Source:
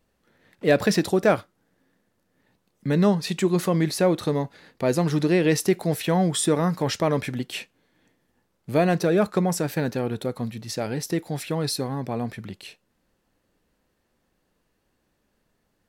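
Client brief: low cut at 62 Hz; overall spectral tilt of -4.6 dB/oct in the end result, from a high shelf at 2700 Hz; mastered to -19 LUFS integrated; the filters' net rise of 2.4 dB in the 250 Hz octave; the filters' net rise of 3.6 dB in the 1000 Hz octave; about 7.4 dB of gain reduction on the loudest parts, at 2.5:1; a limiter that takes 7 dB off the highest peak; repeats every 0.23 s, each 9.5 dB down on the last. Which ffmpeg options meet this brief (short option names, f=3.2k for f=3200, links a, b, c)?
-af "highpass=62,equalizer=f=250:t=o:g=3.5,equalizer=f=1k:t=o:g=4,highshelf=f=2.7k:g=5.5,acompressor=threshold=-23dB:ratio=2.5,alimiter=limit=-17dB:level=0:latency=1,aecho=1:1:230|460|690|920:0.335|0.111|0.0365|0.012,volume=9.5dB"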